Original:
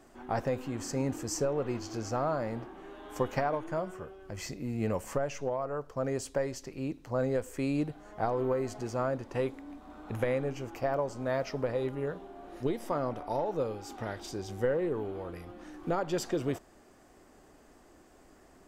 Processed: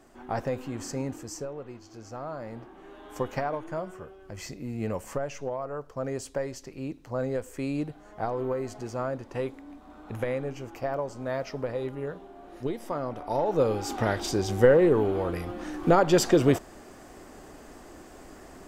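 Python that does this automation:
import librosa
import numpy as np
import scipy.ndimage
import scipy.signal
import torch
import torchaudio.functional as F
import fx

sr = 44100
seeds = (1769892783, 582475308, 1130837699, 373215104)

y = fx.gain(x, sr, db=fx.line((0.87, 1.0), (1.81, -10.5), (2.95, 0.0), (13.09, 0.0), (13.78, 11.0)))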